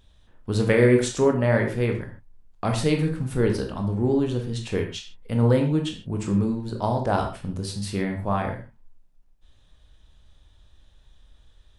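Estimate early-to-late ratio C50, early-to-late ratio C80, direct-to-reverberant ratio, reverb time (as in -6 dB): 7.5 dB, 11.0 dB, 2.5 dB, no single decay rate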